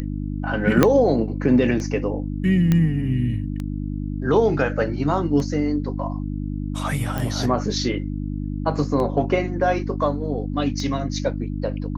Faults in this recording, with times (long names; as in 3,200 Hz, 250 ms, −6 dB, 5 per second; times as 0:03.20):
mains hum 50 Hz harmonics 6 −27 dBFS
scratch tick 33 1/3 rpm −17 dBFS
0:00.83: click −1 dBFS
0:02.72: click −8 dBFS
0:07.18: click